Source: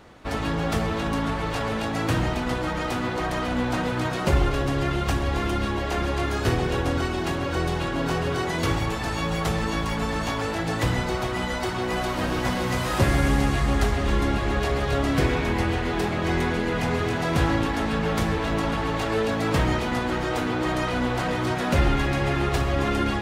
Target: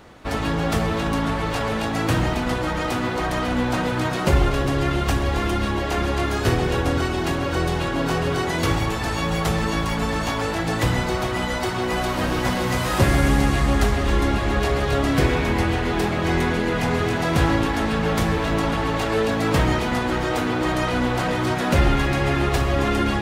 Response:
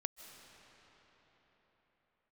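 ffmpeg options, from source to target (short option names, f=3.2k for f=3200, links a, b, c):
-filter_complex "[0:a]asplit=2[a][b];[1:a]atrim=start_sample=2205,highshelf=f=8.9k:g=9[c];[b][c]afir=irnorm=-1:irlink=0,volume=-5.5dB[d];[a][d]amix=inputs=2:normalize=0"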